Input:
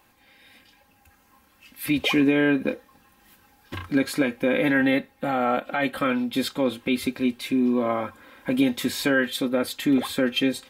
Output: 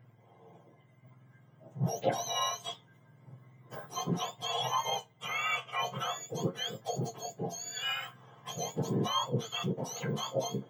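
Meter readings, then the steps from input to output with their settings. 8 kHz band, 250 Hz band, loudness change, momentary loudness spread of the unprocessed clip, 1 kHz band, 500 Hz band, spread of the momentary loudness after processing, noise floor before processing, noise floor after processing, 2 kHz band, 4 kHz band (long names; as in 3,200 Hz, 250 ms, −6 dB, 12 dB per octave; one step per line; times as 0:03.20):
+0.5 dB, −18.0 dB, −10.5 dB, 8 LU, −4.0 dB, −11.0 dB, 9 LU, −60 dBFS, −62 dBFS, −13.0 dB, −4.0 dB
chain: frequency axis turned over on the octave scale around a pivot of 1,300 Hz
flat-topped bell 7,000 Hz −11 dB
flanger 0.43 Hz, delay 7.9 ms, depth 8 ms, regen +59%
level −1.5 dB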